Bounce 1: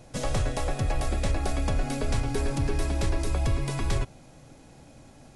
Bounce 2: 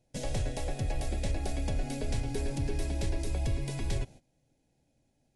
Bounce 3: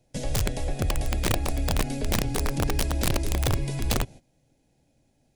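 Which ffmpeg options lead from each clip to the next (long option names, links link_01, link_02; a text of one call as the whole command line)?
ffmpeg -i in.wav -af "agate=range=-17dB:threshold=-42dB:ratio=16:detection=peak,equalizer=frequency=1200:width=2.7:gain=-15,volume=-5dB" out.wav
ffmpeg -i in.wav -filter_complex "[0:a]acrossover=split=350[link_01][link_02];[link_02]acompressor=threshold=-46dB:ratio=1.5[link_03];[link_01][link_03]amix=inputs=2:normalize=0,aeval=exprs='(mod(15.8*val(0)+1,2)-1)/15.8':channel_layout=same,volume=6dB" out.wav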